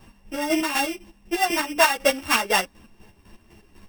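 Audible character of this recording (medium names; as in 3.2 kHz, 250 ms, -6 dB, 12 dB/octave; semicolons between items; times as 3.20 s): a buzz of ramps at a fixed pitch in blocks of 16 samples; chopped level 4 Hz, depth 60%, duty 40%; a shimmering, thickened sound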